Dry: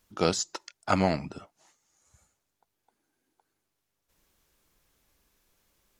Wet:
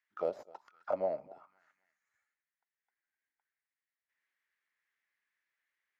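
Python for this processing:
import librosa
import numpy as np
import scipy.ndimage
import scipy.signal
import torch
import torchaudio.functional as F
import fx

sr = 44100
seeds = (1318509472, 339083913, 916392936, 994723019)

y = fx.tracing_dist(x, sr, depth_ms=0.065)
y = fx.echo_feedback(y, sr, ms=258, feedback_pct=42, wet_db=-22.5)
y = fx.auto_wah(y, sr, base_hz=580.0, top_hz=1900.0, q=6.2, full_db=-27.5, direction='down')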